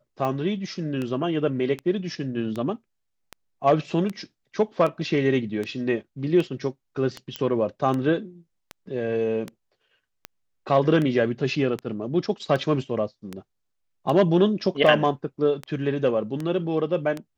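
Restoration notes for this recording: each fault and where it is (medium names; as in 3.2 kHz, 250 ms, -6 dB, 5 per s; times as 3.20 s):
tick 78 rpm -17 dBFS
7.36 s: pop -13 dBFS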